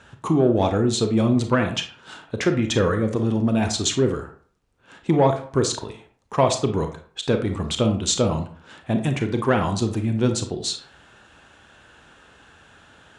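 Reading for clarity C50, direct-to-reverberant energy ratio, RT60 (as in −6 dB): 9.0 dB, 6.0 dB, 0.45 s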